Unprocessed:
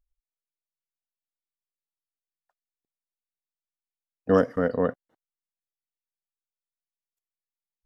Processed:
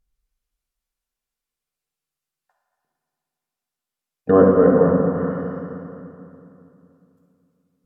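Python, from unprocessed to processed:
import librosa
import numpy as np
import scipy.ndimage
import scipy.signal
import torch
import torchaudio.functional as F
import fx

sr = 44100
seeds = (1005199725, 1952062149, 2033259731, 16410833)

y = fx.rev_fdn(x, sr, rt60_s=2.8, lf_ratio=1.2, hf_ratio=0.7, size_ms=39.0, drr_db=-4.0)
y = fx.env_lowpass_down(y, sr, base_hz=1100.0, full_db=-20.0)
y = y * 10.0 ** (5.0 / 20.0)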